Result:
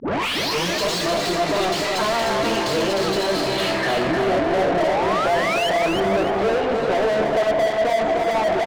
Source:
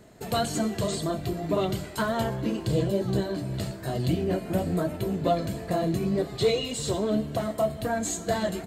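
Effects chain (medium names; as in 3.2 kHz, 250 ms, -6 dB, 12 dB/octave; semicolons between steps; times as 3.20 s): tape start-up on the opening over 0.83 s; high-pass 180 Hz 12 dB/octave; bass shelf 470 Hz -6.5 dB; band-stop 1.5 kHz, Q 7.1; reverse; upward compressor, threshold -30 dBFS; reverse; peak limiter -22.5 dBFS, peak gain reduction 6.5 dB; low-pass sweep 5.7 kHz -> 760 Hz, 3.38–4.31 s; painted sound rise, 4.34–5.70 s, 250–3200 Hz -38 dBFS; overdrive pedal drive 36 dB, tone 2.5 kHz, clips at -14.5 dBFS; on a send: feedback delay 305 ms, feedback 37%, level -4.5 dB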